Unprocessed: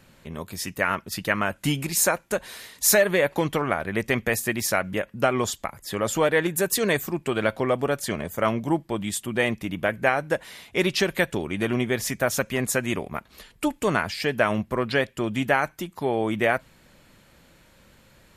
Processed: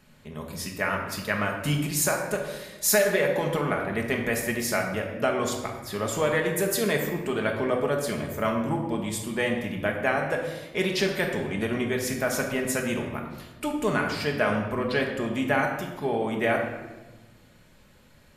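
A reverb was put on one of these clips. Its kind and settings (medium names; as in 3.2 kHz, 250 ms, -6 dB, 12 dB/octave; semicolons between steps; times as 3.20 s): simulated room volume 770 m³, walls mixed, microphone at 1.4 m; trim -5 dB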